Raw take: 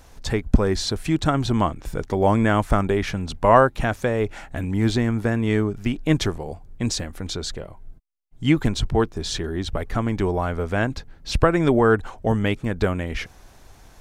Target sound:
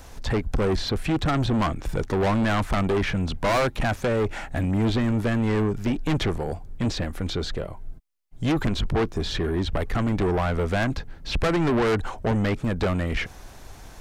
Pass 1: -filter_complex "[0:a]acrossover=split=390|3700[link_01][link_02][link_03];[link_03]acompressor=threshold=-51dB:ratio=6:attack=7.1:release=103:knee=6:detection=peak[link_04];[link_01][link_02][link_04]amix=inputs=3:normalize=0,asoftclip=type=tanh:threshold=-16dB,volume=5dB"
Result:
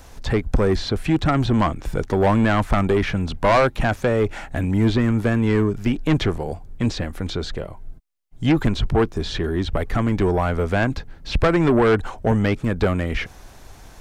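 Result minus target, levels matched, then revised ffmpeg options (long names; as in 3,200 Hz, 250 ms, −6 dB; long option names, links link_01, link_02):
soft clipping: distortion −5 dB
-filter_complex "[0:a]acrossover=split=390|3700[link_01][link_02][link_03];[link_03]acompressor=threshold=-51dB:ratio=6:attack=7.1:release=103:knee=6:detection=peak[link_04];[link_01][link_02][link_04]amix=inputs=3:normalize=0,asoftclip=type=tanh:threshold=-24dB,volume=5dB"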